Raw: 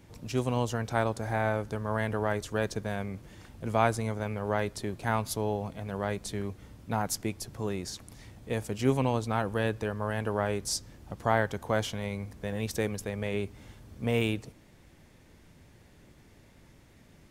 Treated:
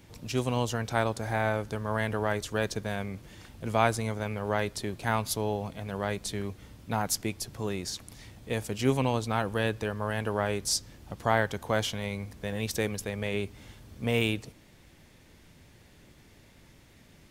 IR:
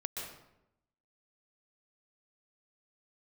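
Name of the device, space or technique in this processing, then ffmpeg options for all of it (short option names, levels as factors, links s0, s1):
presence and air boost: -af "equalizer=f=3500:t=o:w=1.8:g=4.5,highshelf=f=11000:g=6"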